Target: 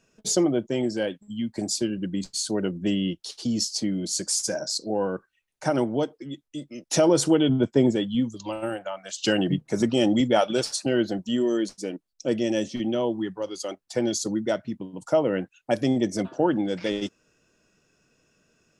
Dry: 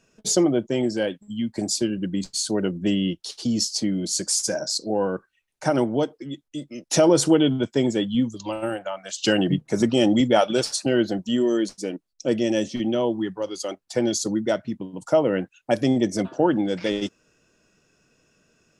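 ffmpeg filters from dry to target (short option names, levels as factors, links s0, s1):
-filter_complex "[0:a]asettb=1/sr,asplit=3[s0][s1][s2];[s0]atrim=end=7.494[s3];[s1]atrim=start=7.49:end=7.96,asetpts=PTS-STARTPTS,afade=t=in:d=0.004:c=qsin,afade=t=out:st=0.466:d=0.004:c=qsin,tiltshelf=f=1500:g=5[s4];[s2]atrim=start=7.956[s5];[s3][s4]acrossfade=d=0.004:c1=hsin:c2=qsin[s6];[s6][s5]acrossfade=d=0.004:c1=qsin:c2=hsin,volume=0.75"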